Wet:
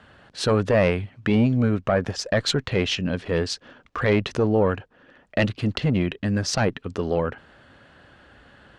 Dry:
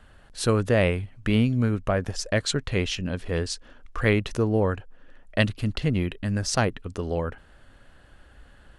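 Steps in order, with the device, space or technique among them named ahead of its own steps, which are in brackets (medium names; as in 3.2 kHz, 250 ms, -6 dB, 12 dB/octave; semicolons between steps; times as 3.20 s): valve radio (band-pass 110–5100 Hz; valve stage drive 10 dB, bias 0.45; transformer saturation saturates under 310 Hz); trim +7.5 dB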